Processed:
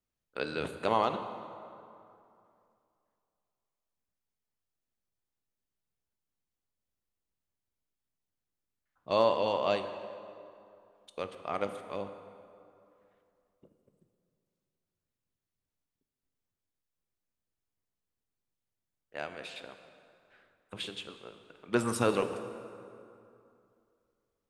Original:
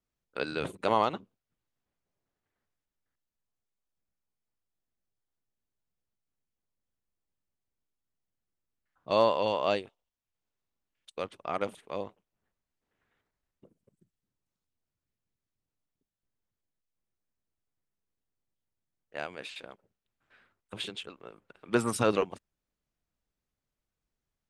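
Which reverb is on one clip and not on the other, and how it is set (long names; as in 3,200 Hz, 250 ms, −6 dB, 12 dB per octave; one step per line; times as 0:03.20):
dense smooth reverb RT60 2.6 s, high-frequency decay 0.65×, DRR 8 dB
level −2 dB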